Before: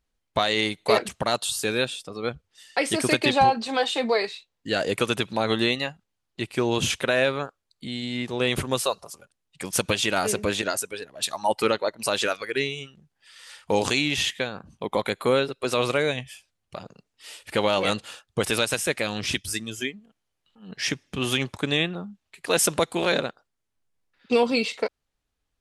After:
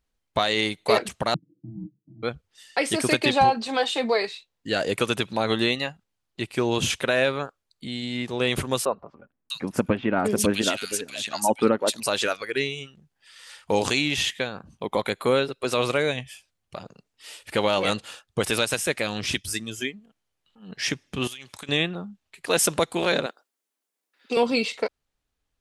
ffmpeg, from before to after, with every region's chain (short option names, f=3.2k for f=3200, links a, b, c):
-filter_complex "[0:a]asettb=1/sr,asplit=3[a][b][c];[a]atrim=end=1.344[d];[b]atrim=start=1.34:end=2.23,asetpts=PTS-STARTPTS,afade=t=in:d=0.004:c=qsin,afade=t=out:st=0.886:d=0.004:c=qsin,aeval=exprs='val(0)*sin(2*PI*440*n/s)':c=same,asuperpass=centerf=180:order=8:qfactor=0.91,aecho=1:1:6.3:0.88,atrim=end_sample=39249[e];[c]atrim=start=2.226[f];[d][e]acrossfade=d=0.004:c1=hsin:c2=qsin[g];[g][f]acrossfade=d=0.004:c1=qsin:c2=hsin,asettb=1/sr,asplit=3[h][i][j];[h]atrim=end=8.854[k];[i]atrim=start=8.85:end=12,asetpts=PTS-STARTPTS,afade=t=in:d=0.004:c=qsin,afade=t=out:st=3.146:d=0.004:c=qsin,equalizer=f=240:w=1.6:g=9.5,acrossover=split=2100[l][m];[m]adelay=650[n];[l][n]amix=inputs=2:normalize=0,atrim=end_sample=138915[o];[j]atrim=start=11.996[p];[k][o]acrossfade=d=0.004:c1=hsin:c2=qsin[q];[q][p]acrossfade=d=0.004:c1=qsin:c2=hsin,asettb=1/sr,asplit=3[r][s][t];[r]atrim=end=21.274[u];[s]atrim=start=21.27:end=21.69,asetpts=PTS-STARTPTS,afade=t=in:d=0.004:c=qsin,afade=t=out:st=0.416:d=0.004:c=qsin,tiltshelf=f=1.4k:g=-8,acompressor=threshold=-36dB:ratio=8:attack=3.2:release=140:knee=1:detection=peak[v];[t]atrim=start=21.686[w];[u][v]acrossfade=d=0.004:c1=hsin:c2=qsin[x];[x][w]acrossfade=d=0.004:c1=qsin:c2=hsin,asettb=1/sr,asplit=3[y][z][aa];[y]atrim=end=23.264[ab];[z]atrim=start=23.26:end=24.37,asetpts=PTS-STARTPTS,afade=t=in:d=0.004:c=qsin,afade=t=out:st=1.106:d=0.004:c=qsin,highpass=f=260:w=0.5412,highpass=f=260:w=1.3066,highshelf=f=8.4k:g=11,acompressor=threshold=-23dB:ratio=2.5:attack=3.2:release=140:knee=1:detection=peak[ac];[aa]atrim=start=24.366[ad];[ab][ac]acrossfade=d=0.004:c1=hsin:c2=qsin[ae];[ae][ad]acrossfade=d=0.004:c1=qsin:c2=hsin"